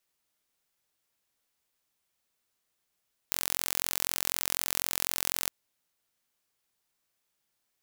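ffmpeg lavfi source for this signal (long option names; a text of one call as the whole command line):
ffmpeg -f lavfi -i "aevalsrc='0.794*eq(mod(n,1002),0)':duration=2.17:sample_rate=44100" out.wav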